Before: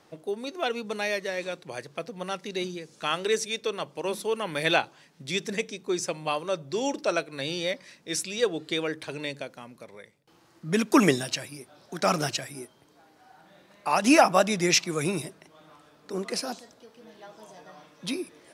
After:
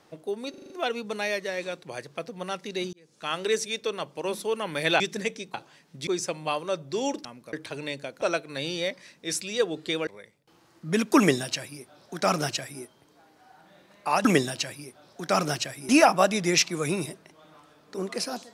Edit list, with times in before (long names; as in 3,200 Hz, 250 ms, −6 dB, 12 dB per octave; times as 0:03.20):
0:00.50: stutter 0.04 s, 6 plays
0:02.73–0:03.23: fade in
0:04.80–0:05.33: move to 0:05.87
0:07.05–0:08.90: swap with 0:09.59–0:09.87
0:10.98–0:12.62: duplicate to 0:14.05